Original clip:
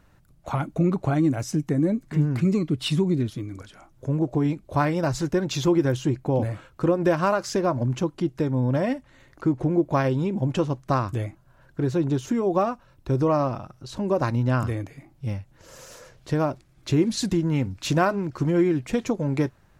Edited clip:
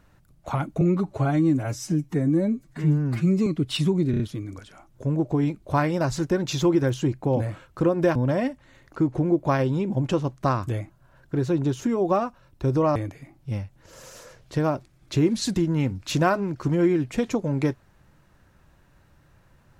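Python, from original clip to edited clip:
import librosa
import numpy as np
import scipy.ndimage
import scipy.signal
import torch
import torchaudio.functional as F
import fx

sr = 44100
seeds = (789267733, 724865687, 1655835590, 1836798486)

y = fx.edit(x, sr, fx.stretch_span(start_s=0.81, length_s=1.77, factor=1.5),
    fx.stutter(start_s=3.22, slice_s=0.03, count=4),
    fx.cut(start_s=7.18, length_s=1.43),
    fx.cut(start_s=13.41, length_s=1.3), tone=tone)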